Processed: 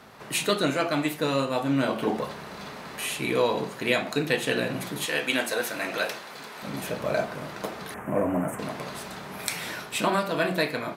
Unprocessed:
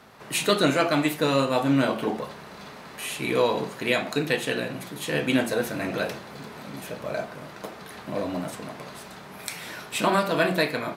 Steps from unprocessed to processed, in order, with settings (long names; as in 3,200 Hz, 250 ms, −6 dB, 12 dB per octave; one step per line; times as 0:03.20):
0:05.06–0:06.63: high-pass filter 940 Hz 6 dB per octave
speech leveller within 4 dB 0.5 s
0:07.94–0:08.59: Butterworth band-reject 4,300 Hz, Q 0.67